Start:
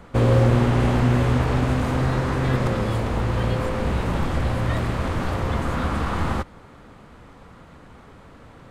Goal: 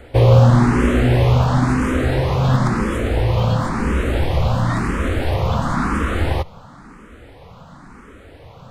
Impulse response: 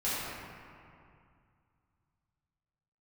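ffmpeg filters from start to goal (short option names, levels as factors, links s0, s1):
-filter_complex "[0:a]asplit=2[s0][s1];[s1]afreqshift=0.97[s2];[s0][s2]amix=inputs=2:normalize=1,volume=2.37"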